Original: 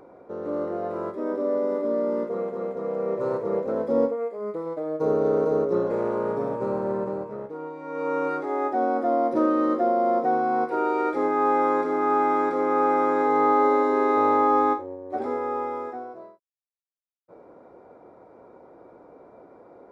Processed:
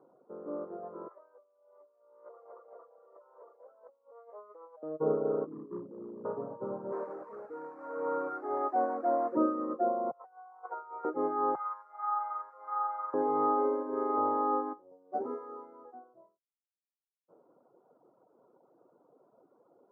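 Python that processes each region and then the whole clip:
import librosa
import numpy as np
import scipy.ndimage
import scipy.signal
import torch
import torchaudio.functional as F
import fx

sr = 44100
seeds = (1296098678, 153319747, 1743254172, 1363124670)

y = fx.chain(x, sr, fx.highpass(hz=590.0, slope=24),
    fx.over_compress(threshold_db=-41.0, ratio=-1.0), at=(1.08, 4.83))
y = fx.chain(y, sr, fx.ladder_lowpass(hz=370.0, resonance_pct=40),
    fx.leveller(passes=2), at=(5.46, 6.25))
y = fx.chain(y, sr, fx.zero_step(step_db=-29.0),
    fx.highpass(hz=290.0, slope=12),
    fx.high_shelf(hz=2500.0, db=11.0), at=(6.92, 9.37))
y = fx.chain(y, sr, fx.highpass(hz=650.0, slope=24),
    fx.over_compress(threshold_db=-30.0, ratio=-0.5), at=(10.11, 11.05))
y = fx.chain(y, sr, fx.crossing_spikes(level_db=-25.0),
    fx.highpass(hz=850.0, slope=24),
    fx.doubler(ms=13.0, db=-6.5), at=(11.55, 13.14))
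y = fx.chain(y, sr, fx.doubler(ms=15.0, db=-3.0),
    fx.resample_bad(factor=8, down='none', up='hold'), at=(14.9, 15.85))
y = scipy.signal.sosfilt(scipy.signal.ellip(3, 1.0, 40, [130.0, 1300.0], 'bandpass', fs=sr, output='sos'), y)
y = fx.dereverb_blind(y, sr, rt60_s=1.2)
y = fx.upward_expand(y, sr, threshold_db=-39.0, expansion=1.5)
y = F.gain(torch.from_numpy(y), -3.5).numpy()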